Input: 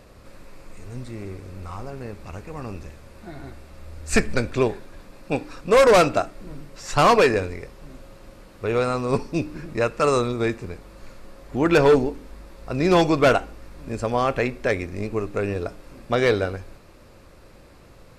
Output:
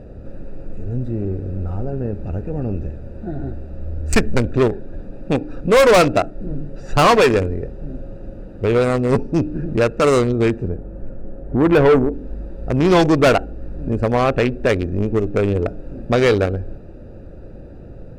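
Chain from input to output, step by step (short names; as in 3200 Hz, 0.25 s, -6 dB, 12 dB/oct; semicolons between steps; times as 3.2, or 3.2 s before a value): Wiener smoothing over 41 samples; 10.68–12.13 bell 4700 Hz -14.5 dB 1.8 oct; in parallel at +1 dB: compressor, threshold -32 dBFS, peak gain reduction 17.5 dB; on the sum: soft clip -15 dBFS, distortion -12 dB; gain +7 dB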